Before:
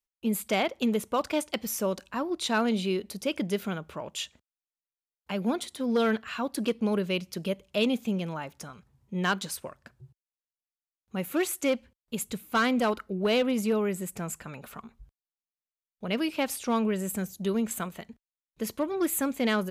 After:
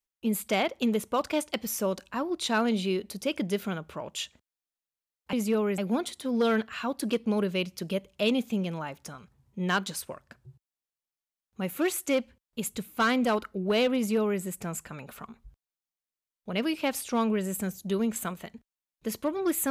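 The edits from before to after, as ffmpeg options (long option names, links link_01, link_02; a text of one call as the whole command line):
ffmpeg -i in.wav -filter_complex "[0:a]asplit=3[link_01][link_02][link_03];[link_01]atrim=end=5.332[link_04];[link_02]atrim=start=13.508:end=13.962[link_05];[link_03]atrim=start=5.328[link_06];[link_04][link_05]acrossfade=duration=0.004:curve1=hsin:curve2=hsin[link_07];[link_07][link_06]acrossfade=duration=0.004:curve1=hsin:curve2=hsin" out.wav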